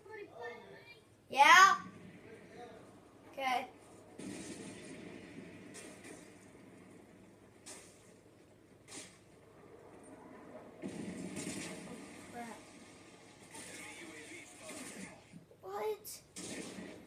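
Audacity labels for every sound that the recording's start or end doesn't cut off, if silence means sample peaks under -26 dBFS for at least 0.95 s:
1.390000	1.730000	sound
3.470000	3.570000	sound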